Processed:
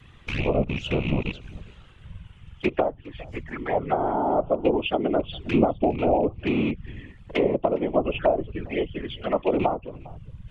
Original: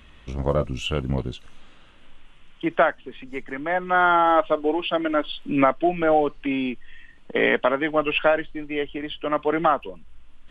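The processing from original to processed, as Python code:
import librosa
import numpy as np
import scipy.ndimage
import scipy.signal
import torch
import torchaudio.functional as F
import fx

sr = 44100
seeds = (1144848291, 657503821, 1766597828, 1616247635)

y = fx.rattle_buzz(x, sr, strikes_db=-30.0, level_db=-14.0)
y = fx.env_lowpass_down(y, sr, base_hz=660.0, full_db=-16.0)
y = fx.env_flanger(y, sr, rest_ms=3.0, full_db=-22.0)
y = y + 10.0 ** (-22.5 / 20.0) * np.pad(y, (int(407 * sr / 1000.0), 0))[:len(y)]
y = fx.whisperise(y, sr, seeds[0])
y = F.gain(torch.from_numpy(y), 1.5).numpy()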